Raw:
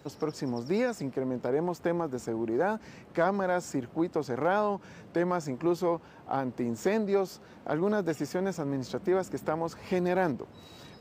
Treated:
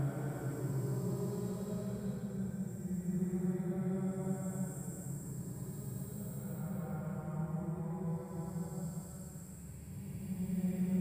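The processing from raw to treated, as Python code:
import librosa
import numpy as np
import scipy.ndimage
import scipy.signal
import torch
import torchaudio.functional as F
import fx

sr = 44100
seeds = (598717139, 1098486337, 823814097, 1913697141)

y = fx.spec_box(x, sr, start_s=7.92, length_s=2.19, low_hz=210.0, high_hz=7300.0, gain_db=-21)
y = fx.echo_feedback(y, sr, ms=500, feedback_pct=29, wet_db=-6.5)
y = fx.paulstretch(y, sr, seeds[0], factor=8.9, window_s=0.25, from_s=8.71)
y = y * 10.0 ** (1.0 / 20.0)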